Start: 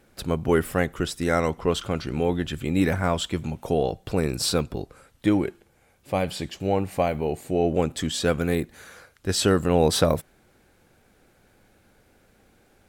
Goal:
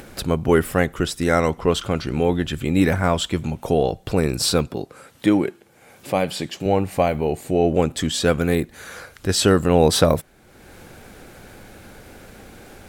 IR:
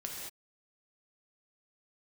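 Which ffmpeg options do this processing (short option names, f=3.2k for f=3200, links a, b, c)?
-filter_complex "[0:a]asplit=2[a][b];[b]acompressor=mode=upward:threshold=-25dB:ratio=2.5,volume=-1.5dB[c];[a][c]amix=inputs=2:normalize=0,asettb=1/sr,asplit=3[d][e][f];[d]atrim=end=4.674[g];[e]atrim=start=4.67:end=6.66,asetpts=PTS-STARTPTS,afade=t=in:d=0.004:c=qsin,afade=t=out:st=1.986:d=0.004:c=qsin,highpass=140[h];[f]atrim=start=6.656[i];[g][h]acrossfade=d=0.004:c1=hsin:c2=qsin[j];[j][i]acrossfade=d=0.004:c1=qsin:c2=hsin,volume=-1dB"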